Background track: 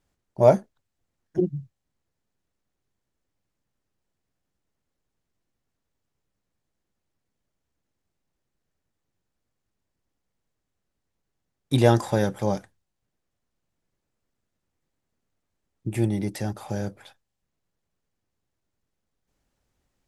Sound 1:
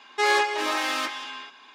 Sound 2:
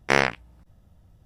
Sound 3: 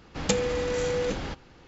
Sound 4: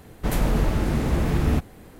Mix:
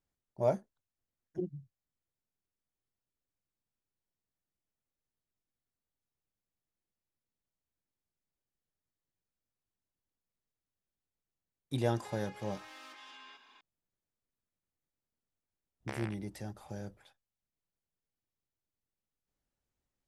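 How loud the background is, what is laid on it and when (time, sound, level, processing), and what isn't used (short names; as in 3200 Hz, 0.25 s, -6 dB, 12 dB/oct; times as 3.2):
background track -13.5 dB
11.87 add 1 -11.5 dB + compressor 8:1, threshold -37 dBFS
15.79 add 2 -11.5 dB, fades 0.10 s + compressor 12:1, threshold -24 dBFS
not used: 3, 4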